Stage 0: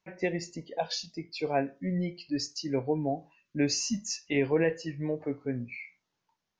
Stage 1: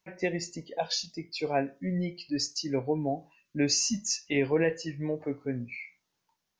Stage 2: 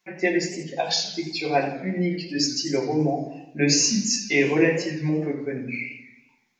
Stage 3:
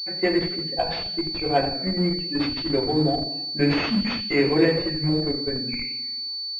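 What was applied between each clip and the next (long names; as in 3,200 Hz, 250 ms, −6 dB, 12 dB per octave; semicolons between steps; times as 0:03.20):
high-shelf EQ 5,400 Hz +8 dB
convolution reverb RT60 0.65 s, pre-delay 3 ms, DRR −1.5 dB; feedback echo with a swinging delay time 86 ms, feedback 55%, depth 163 cents, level −14 dB
in parallel at −11.5 dB: comparator with hysteresis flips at −22.5 dBFS; on the sum: switching amplifier with a slow clock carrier 4,500 Hz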